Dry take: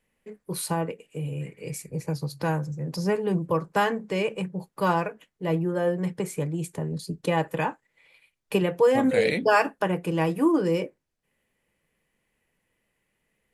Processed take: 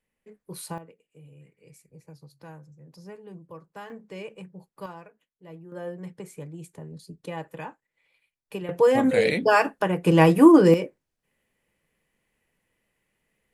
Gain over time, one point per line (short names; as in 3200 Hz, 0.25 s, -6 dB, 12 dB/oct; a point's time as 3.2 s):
-7.5 dB
from 0.78 s -18.5 dB
from 3.9 s -12 dB
from 4.86 s -19 dB
from 5.72 s -10.5 dB
from 8.69 s +1 dB
from 10.06 s +8.5 dB
from 10.74 s 0 dB